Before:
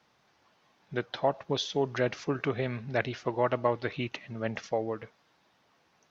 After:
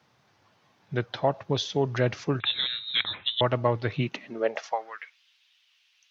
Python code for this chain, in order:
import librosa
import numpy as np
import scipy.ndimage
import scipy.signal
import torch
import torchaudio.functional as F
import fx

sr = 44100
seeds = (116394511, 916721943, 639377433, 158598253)

y = fx.freq_invert(x, sr, carrier_hz=3900, at=(2.4, 3.41))
y = fx.filter_sweep_highpass(y, sr, from_hz=100.0, to_hz=2900.0, start_s=3.89, end_s=5.18, q=3.2)
y = y * librosa.db_to_amplitude(2.0)